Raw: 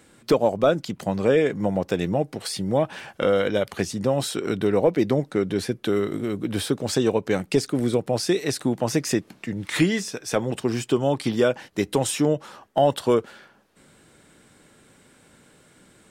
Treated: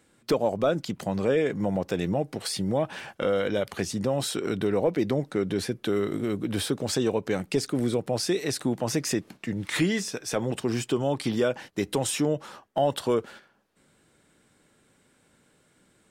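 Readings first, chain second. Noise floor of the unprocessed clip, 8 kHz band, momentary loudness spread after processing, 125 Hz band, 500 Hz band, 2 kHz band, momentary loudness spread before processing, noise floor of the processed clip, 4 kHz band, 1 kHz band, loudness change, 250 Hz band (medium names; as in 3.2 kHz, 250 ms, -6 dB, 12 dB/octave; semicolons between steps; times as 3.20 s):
-57 dBFS, -1.5 dB, 5 LU, -3.5 dB, -4.5 dB, -3.5 dB, 7 LU, -65 dBFS, -2.0 dB, -4.5 dB, -4.0 dB, -3.5 dB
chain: in parallel at +3 dB: peak limiter -18.5 dBFS, peak gain reduction 10.5 dB; on the sum: gate -36 dBFS, range -8 dB; trim -8.5 dB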